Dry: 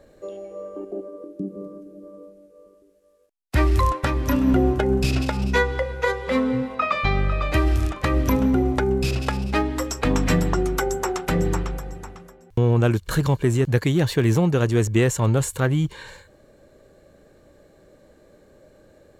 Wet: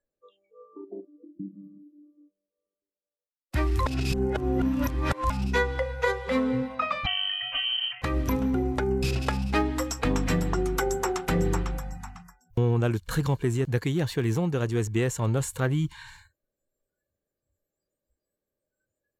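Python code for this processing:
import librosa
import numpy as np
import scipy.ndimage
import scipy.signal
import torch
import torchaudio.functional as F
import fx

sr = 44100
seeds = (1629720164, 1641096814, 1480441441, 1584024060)

y = fx.freq_invert(x, sr, carrier_hz=3100, at=(7.06, 8.02))
y = fx.edit(y, sr, fx.reverse_span(start_s=3.86, length_s=1.44), tone=tone)
y = fx.noise_reduce_blind(y, sr, reduce_db=30)
y = fx.rider(y, sr, range_db=10, speed_s=0.5)
y = F.gain(torch.from_numpy(y), -6.0).numpy()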